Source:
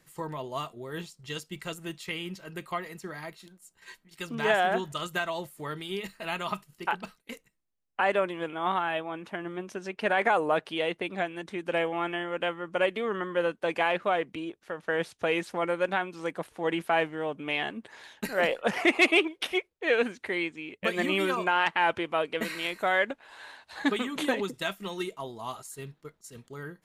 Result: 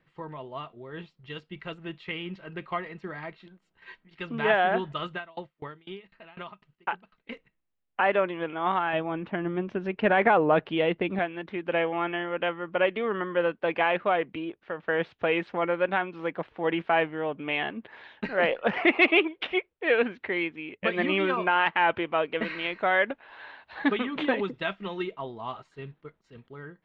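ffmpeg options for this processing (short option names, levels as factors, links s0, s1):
-filter_complex "[0:a]asettb=1/sr,asplit=3[s0][s1][s2];[s0]atrim=end=5.124[s3];[s1]atrim=start=5.12:end=7.18,asetpts=PTS-STARTPTS,afade=t=in:d=0.004:c=qsin,afade=t=out:st=2.056:d=0.004:c=qsin,aeval=exprs='val(0)*pow(10,-28*if(lt(mod(4*n/s,1),2*abs(4)/1000),1-mod(4*n/s,1)/(2*abs(4)/1000),(mod(4*n/s,1)-2*abs(4)/1000)/(1-2*abs(4)/1000))/20)':c=same[s4];[s2]atrim=start=7.176[s5];[s3][s4]acrossfade=d=0.004:c1=hsin:c2=qsin[s6];[s6][s5]acrossfade=d=0.004:c1=qsin:c2=hsin,asettb=1/sr,asplit=3[s7][s8][s9];[s7]atrim=end=8.934[s10];[s8]atrim=start=8.93:end=11.19,asetpts=PTS-STARTPTS,afade=t=in:d=0.004:c=qsin,afade=t=out:st=2.256:d=0.004:c=qsin,lowshelf=f=310:g=10.5[s11];[s9]atrim=start=11.186[s12];[s10][s11]acrossfade=d=0.004:c1=hsin:c2=qsin[s13];[s13][s12]acrossfade=d=0.004:c1=qsin:c2=hsin,lowpass=f=3200:w=0.5412,lowpass=f=3200:w=1.3066,dynaudnorm=f=700:g=5:m=1.88,volume=0.668"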